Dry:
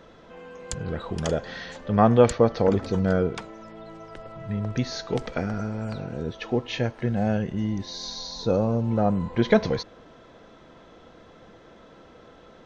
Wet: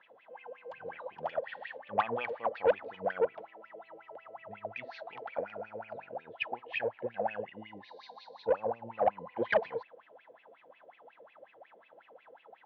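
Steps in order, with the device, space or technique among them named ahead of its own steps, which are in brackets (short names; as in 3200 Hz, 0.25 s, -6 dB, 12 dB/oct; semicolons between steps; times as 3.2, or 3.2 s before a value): wah-wah guitar rig (wah 5.5 Hz 450–2600 Hz, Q 13; tube stage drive 25 dB, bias 0.25; speaker cabinet 99–4300 Hz, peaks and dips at 110 Hz +5 dB, 420 Hz -5 dB, 840 Hz +6 dB, 1300 Hz -6 dB, 2900 Hz +5 dB); gain +8 dB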